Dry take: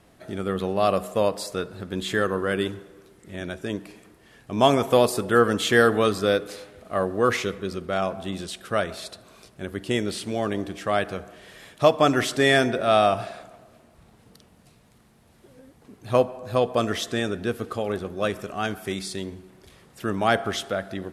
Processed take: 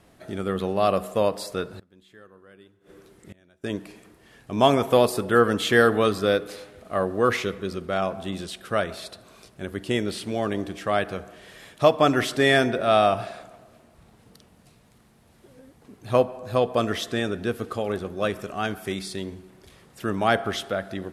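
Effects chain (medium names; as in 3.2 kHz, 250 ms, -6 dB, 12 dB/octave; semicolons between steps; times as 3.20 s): dynamic bell 7.1 kHz, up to -4 dB, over -46 dBFS, Q 1.3; 1.72–3.64 s: inverted gate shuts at -30 dBFS, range -26 dB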